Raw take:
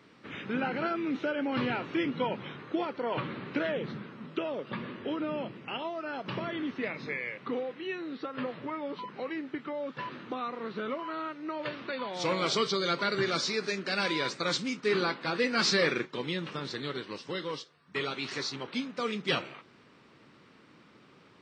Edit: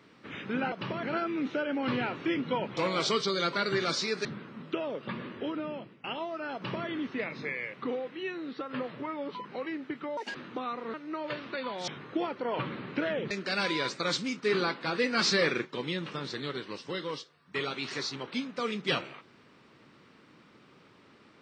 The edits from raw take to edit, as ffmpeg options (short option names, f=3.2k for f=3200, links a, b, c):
-filter_complex "[0:a]asplit=11[a][b][c][d][e][f][g][h][i][j][k];[a]atrim=end=0.722[l];[b]atrim=start=6.188:end=6.502[m];[c]atrim=start=0.718:end=2.462[n];[d]atrim=start=12.228:end=13.712[o];[e]atrim=start=3.888:end=5.68,asetpts=PTS-STARTPTS,afade=t=out:st=0.972:d=0.82:c=qsin:silence=0.188365[p];[f]atrim=start=5.68:end=9.814,asetpts=PTS-STARTPTS,afade=t=in:d=0.004:c=hsin:silence=0.188365[q];[g]atrim=start=9.81:end=10.1,asetpts=PTS-STARTPTS,asetrate=72324,aresample=44100,atrim=end_sample=7798,asetpts=PTS-STARTPTS[r];[h]atrim=start=10.096:end=10.692[s];[i]atrim=start=11.288:end=12.232[t];[j]atrim=start=2.458:end=3.892[u];[k]atrim=start=13.708[v];[l][m]acrossfade=d=0.004:c1=hsin:c2=hsin[w];[w][n]acrossfade=d=0.004:c1=hsin:c2=hsin[x];[x][o]acrossfade=d=0.004:c1=hsin:c2=hsin[y];[p][q]concat=n=2:v=0:a=1[z];[y][z]acrossfade=d=0.004:c1=hsin:c2=hsin[aa];[aa][r]acrossfade=d=0.004:c1=hsin:c2=hsin[ab];[ab][s]acrossfade=d=0.004:c1=hsin:c2=hsin[ac];[ac][t]acrossfade=d=0.004:c1=hsin:c2=hsin[ad];[ad][u]acrossfade=d=0.004:c1=hsin:c2=hsin[ae];[ae][v]acrossfade=d=0.004:c1=hsin:c2=hsin"